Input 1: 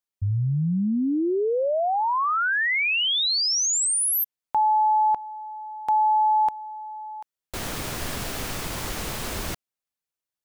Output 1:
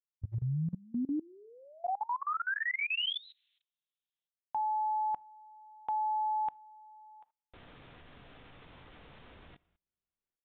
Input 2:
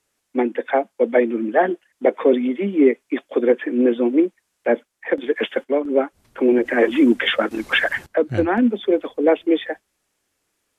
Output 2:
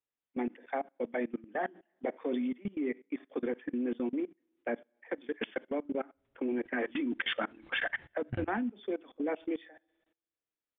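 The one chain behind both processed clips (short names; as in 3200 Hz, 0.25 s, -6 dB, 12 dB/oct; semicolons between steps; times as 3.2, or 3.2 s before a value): dynamic EQ 480 Hz, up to -7 dB, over -31 dBFS, Q 2.1; two-slope reverb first 0.32 s, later 1.6 s, from -27 dB, DRR 11.5 dB; downsampling 8000 Hz; level quantiser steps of 23 dB; gain -8.5 dB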